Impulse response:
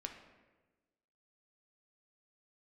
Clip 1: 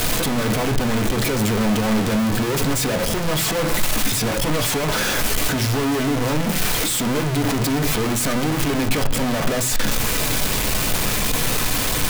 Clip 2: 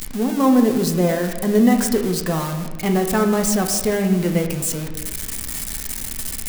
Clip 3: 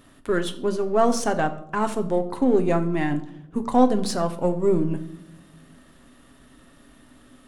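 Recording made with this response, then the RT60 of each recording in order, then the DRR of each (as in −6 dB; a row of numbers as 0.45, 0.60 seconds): 2; non-exponential decay, 1.2 s, non-exponential decay; 6.0, 3.5, 7.0 decibels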